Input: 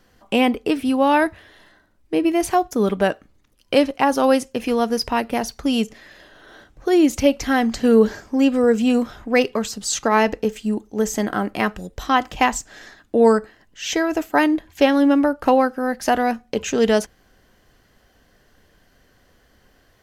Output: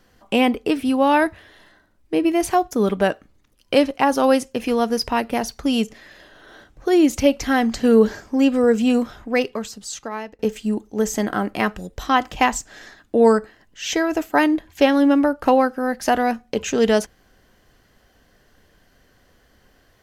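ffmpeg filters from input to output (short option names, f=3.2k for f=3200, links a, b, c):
-filter_complex "[0:a]asplit=2[a][b];[a]atrim=end=10.39,asetpts=PTS-STARTPTS,afade=t=out:st=8.93:d=1.46:silence=0.0707946[c];[b]atrim=start=10.39,asetpts=PTS-STARTPTS,afade=t=in:d=0.004:c=hsin:silence=0.0707946[d];[c][d]concat=n=2:v=0:a=1"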